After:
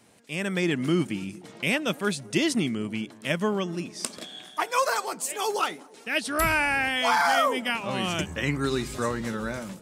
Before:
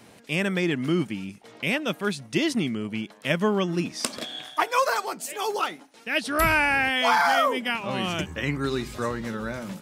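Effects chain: bell 8300 Hz +6 dB 0.89 oct; AGC gain up to 9.5 dB; on a send: dark delay 0.22 s, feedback 56%, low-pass 670 Hz, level -20 dB; on the sum: gain -8.5 dB

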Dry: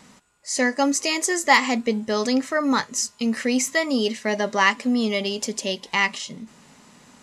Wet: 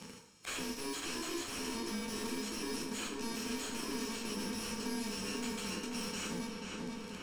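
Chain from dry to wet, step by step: FFT order left unsorted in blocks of 64 samples; HPF 110 Hz 12 dB/oct; bell 6900 Hz +6.5 dB 0.75 oct; sample leveller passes 5; auto swell 0.138 s; soft clip -31 dBFS, distortion -5 dB; air absorption 67 m; darkening echo 0.486 s, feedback 68%, low-pass 2200 Hz, level -5 dB; plate-style reverb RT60 0.56 s, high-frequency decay 0.9×, DRR 1 dB; three-band squash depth 70%; gain -6 dB

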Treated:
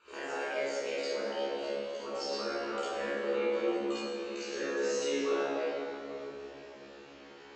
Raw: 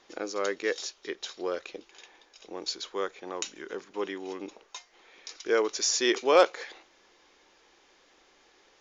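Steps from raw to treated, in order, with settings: speed glide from 127% -> 106%; compressor 16:1, threshold -37 dBFS, peak gain reduction 23.5 dB; air absorption 78 m; resonator 70 Hz, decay 0.55 s, harmonics all, mix 100%; reverb RT60 3.5 s, pre-delay 23 ms, DRR -7 dB; gain +5.5 dB

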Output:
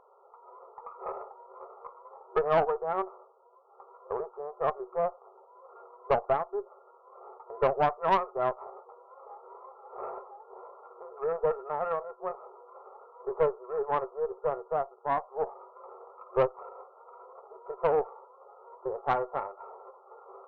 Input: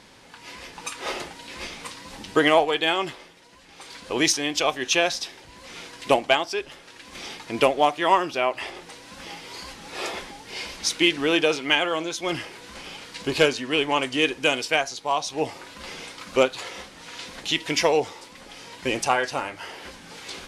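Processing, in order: FFT band-pass 370–1400 Hz; tube stage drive 14 dB, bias 0.5; gain -2 dB

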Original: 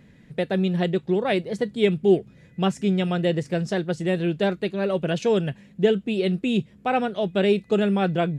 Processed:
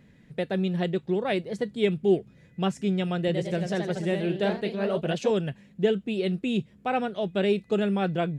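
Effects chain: 3.17–5.32 echoes that change speed 0.108 s, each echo +1 st, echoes 3, each echo -6 dB; gain -4 dB

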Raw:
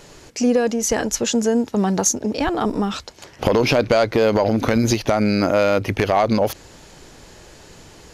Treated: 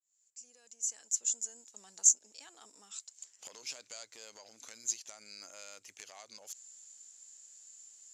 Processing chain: opening faded in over 1.66 s; band-pass 7300 Hz, Q 11; gain +3.5 dB

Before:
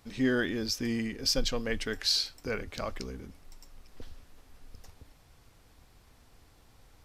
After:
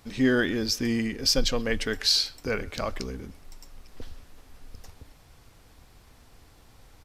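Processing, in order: speakerphone echo 0.13 s, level -23 dB; gain +5 dB

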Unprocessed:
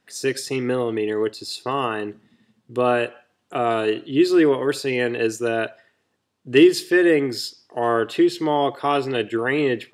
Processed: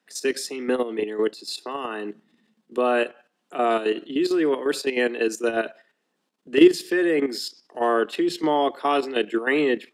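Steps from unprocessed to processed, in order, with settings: steep high-pass 160 Hz 96 dB/oct; level quantiser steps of 11 dB; gain +2 dB

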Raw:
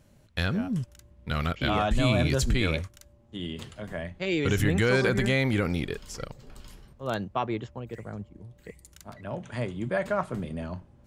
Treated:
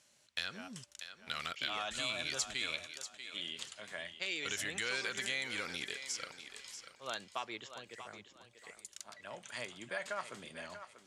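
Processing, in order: weighting filter ITU-R 468; compressor 2.5:1, threshold -29 dBFS, peak gain reduction 9.5 dB; thinning echo 0.639 s, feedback 28%, high-pass 330 Hz, level -10 dB; gain -7.5 dB

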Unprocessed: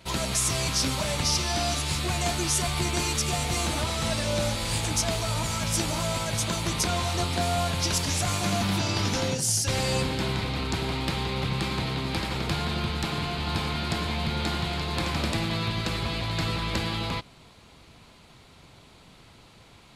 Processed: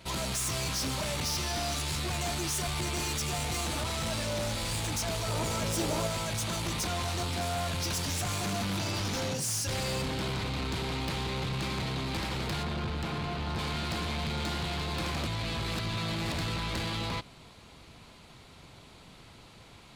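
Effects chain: 12.63–13.59 high shelf 2800 Hz -8.5 dB; soft clip -29 dBFS, distortion -9 dB; 5.28–6.07 bell 450 Hz +9 dB 1.3 oct; 15.27–16.38 reverse

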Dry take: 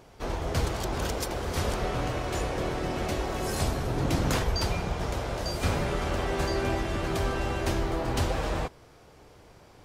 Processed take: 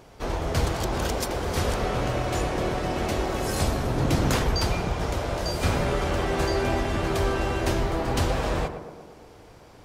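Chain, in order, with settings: tape echo 0.117 s, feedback 71%, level -7 dB, low-pass 1300 Hz; gain +3 dB

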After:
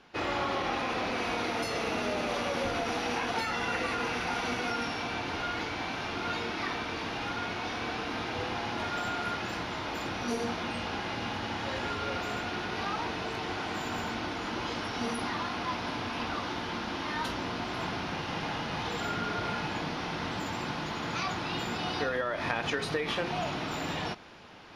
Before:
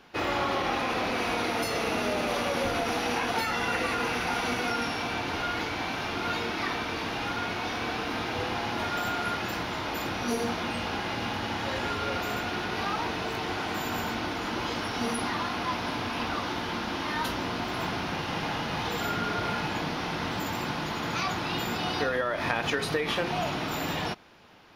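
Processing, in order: LPF 8800 Hz 12 dB/oct; reverse; upward compressor, threshold -39 dBFS; reverse; gain -3 dB

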